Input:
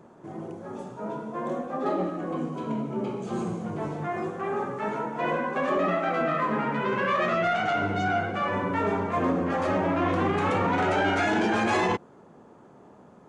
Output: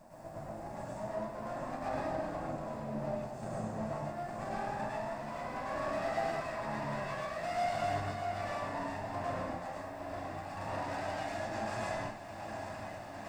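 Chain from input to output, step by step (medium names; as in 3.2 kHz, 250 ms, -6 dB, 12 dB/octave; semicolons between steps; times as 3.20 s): comb filter that takes the minimum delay 1.1 ms; peak limiter -22 dBFS, peak gain reduction 6.5 dB; echo that smears into a reverb 910 ms, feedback 68%, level -11.5 dB; random-step tremolo, depth 85%; word length cut 12-bit, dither triangular; compression 2:1, threshold -41 dBFS, peak gain reduction 8.5 dB; graphic EQ with 31 bands 630 Hz +12 dB, 3.15 kHz -6 dB, 5 kHz +7 dB, 8 kHz +9 dB; plate-style reverb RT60 0.55 s, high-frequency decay 0.85×, pre-delay 90 ms, DRR -5 dB; trim -6.5 dB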